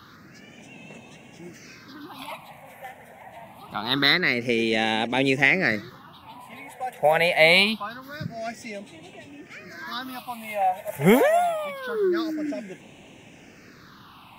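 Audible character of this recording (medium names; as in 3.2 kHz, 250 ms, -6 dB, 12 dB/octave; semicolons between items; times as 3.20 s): phasing stages 6, 0.25 Hz, lowest notch 310–1300 Hz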